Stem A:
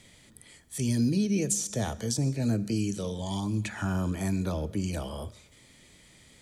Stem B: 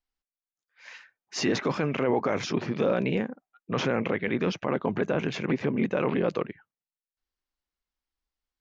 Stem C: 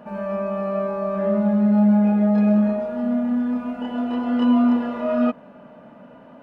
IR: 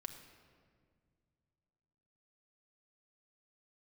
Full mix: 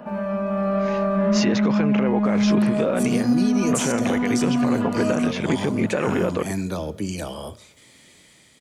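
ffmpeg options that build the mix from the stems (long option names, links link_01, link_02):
-filter_complex "[0:a]highpass=frequency=200:poles=1,adelay=2250,volume=1.5dB[link_01];[1:a]volume=1.5dB[link_02];[2:a]acrossover=split=250|1400[link_03][link_04][link_05];[link_03]acompressor=threshold=-25dB:ratio=4[link_06];[link_04]acompressor=threshold=-32dB:ratio=4[link_07];[link_05]acompressor=threshold=-42dB:ratio=4[link_08];[link_06][link_07][link_08]amix=inputs=3:normalize=0,asoftclip=type=tanh:threshold=-22dB,volume=2dB,asplit=2[link_09][link_10];[link_10]volume=-6.5dB[link_11];[3:a]atrim=start_sample=2205[link_12];[link_11][link_12]afir=irnorm=-1:irlink=0[link_13];[link_01][link_02][link_09][link_13]amix=inputs=4:normalize=0,dynaudnorm=framelen=230:gausssize=5:maxgain=4.5dB,alimiter=limit=-11dB:level=0:latency=1:release=192"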